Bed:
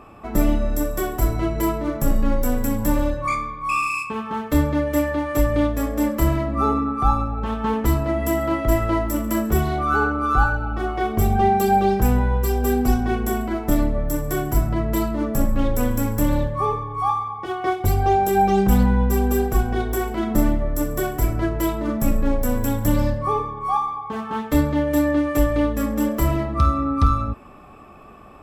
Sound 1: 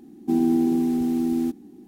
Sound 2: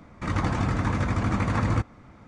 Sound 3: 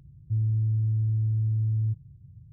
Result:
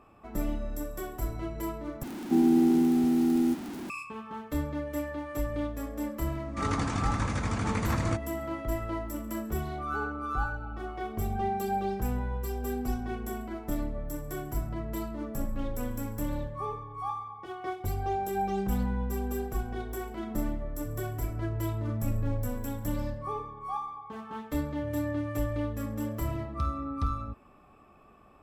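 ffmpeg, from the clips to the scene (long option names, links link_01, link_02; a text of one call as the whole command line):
ffmpeg -i bed.wav -i cue0.wav -i cue1.wav -i cue2.wav -filter_complex "[3:a]asplit=2[link_01][link_02];[0:a]volume=-13dB[link_03];[1:a]aeval=exprs='val(0)+0.5*0.0237*sgn(val(0))':channel_layout=same[link_04];[2:a]crystalizer=i=2.5:c=0[link_05];[link_01]asubboost=boost=7:cutoff=200[link_06];[link_03]asplit=2[link_07][link_08];[link_07]atrim=end=2.034[link_09];[link_04]atrim=end=1.87,asetpts=PTS-STARTPTS,volume=-2.5dB[link_10];[link_08]atrim=start=3.896[link_11];[link_05]atrim=end=2.27,asetpts=PTS-STARTPTS,volume=-6dB,afade=type=in:duration=0.004:curve=hsin,afade=type=out:start_time=2.266:duration=0.004:curve=hsin,adelay=6350[link_12];[link_06]atrim=end=2.52,asetpts=PTS-STARTPTS,volume=-17.5dB,afade=type=in:duration=0.004:curve=hsin,afade=type=out:start_time=2.516:duration=0.004:curve=hsin,adelay=20550[link_13];[link_02]atrim=end=2.52,asetpts=PTS-STARTPTS,volume=-14.5dB,afade=type=in:duration=0.004:curve=hsin,afade=type=out:start_time=2.516:duration=0.004:curve=hsin,adelay=24520[link_14];[link_09][link_10]acrossfade=duration=0.004:curve1=hsin:curve2=hsin[link_15];[link_15][link_11]acrossfade=duration=0.004:curve1=hsin:curve2=hsin[link_16];[link_16][link_12][link_13][link_14]amix=inputs=4:normalize=0" out.wav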